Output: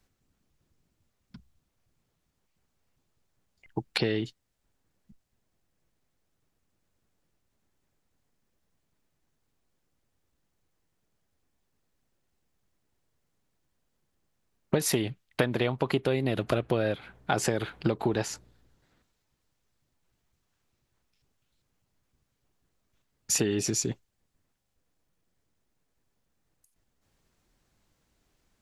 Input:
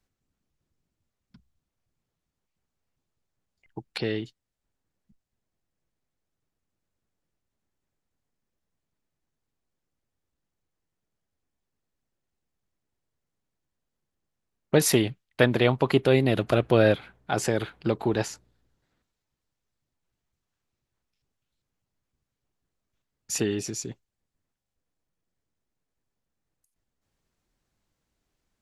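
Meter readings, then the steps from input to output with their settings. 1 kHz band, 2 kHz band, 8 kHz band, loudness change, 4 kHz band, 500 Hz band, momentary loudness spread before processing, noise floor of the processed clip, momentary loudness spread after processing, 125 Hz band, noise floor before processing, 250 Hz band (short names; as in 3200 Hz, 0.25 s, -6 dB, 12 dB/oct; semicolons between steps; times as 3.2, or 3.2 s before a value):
-2.5 dB, -4.5 dB, +1.0 dB, -4.5 dB, -2.0 dB, -5.5 dB, 13 LU, -78 dBFS, 10 LU, -4.5 dB, -84 dBFS, -4.0 dB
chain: compressor 10:1, threshold -29 dBFS, peak gain reduction 15.5 dB; gain +6.5 dB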